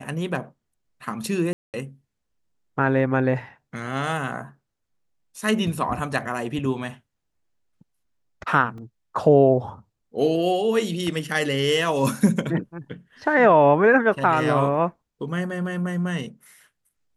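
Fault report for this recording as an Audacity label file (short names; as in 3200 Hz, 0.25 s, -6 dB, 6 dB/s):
1.530000	1.740000	gap 0.208 s
8.780000	8.780000	gap 2.6 ms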